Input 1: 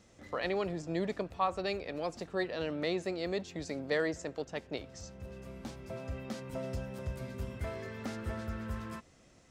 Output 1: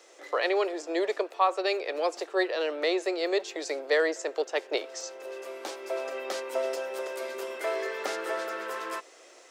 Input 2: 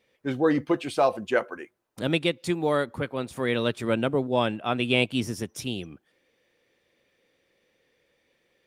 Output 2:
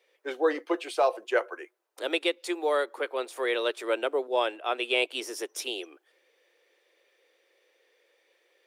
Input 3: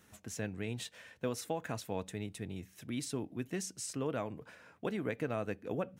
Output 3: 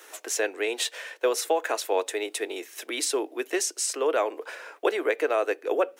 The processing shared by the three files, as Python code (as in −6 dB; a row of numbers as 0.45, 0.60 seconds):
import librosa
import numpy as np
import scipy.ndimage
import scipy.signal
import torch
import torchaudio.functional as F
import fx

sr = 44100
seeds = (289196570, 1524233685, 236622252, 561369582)

p1 = scipy.signal.sosfilt(scipy.signal.butter(8, 350.0, 'highpass', fs=sr, output='sos'), x)
p2 = fx.rider(p1, sr, range_db=5, speed_s=0.5)
p3 = p1 + F.gain(torch.from_numpy(p2), 0.5).numpy()
y = p3 * 10.0 ** (-12 / 20.0) / np.max(np.abs(p3))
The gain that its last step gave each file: +2.5, −7.0, +8.0 decibels